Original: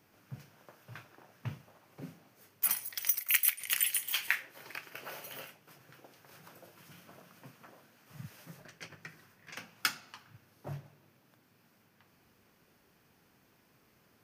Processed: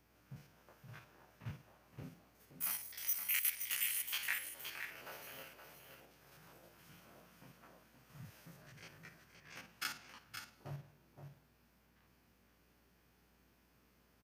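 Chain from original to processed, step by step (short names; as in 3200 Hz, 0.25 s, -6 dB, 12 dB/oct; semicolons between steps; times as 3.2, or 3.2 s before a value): stepped spectrum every 50 ms; hum 60 Hz, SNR 29 dB; echo 0.521 s -7.5 dB; gain -4.5 dB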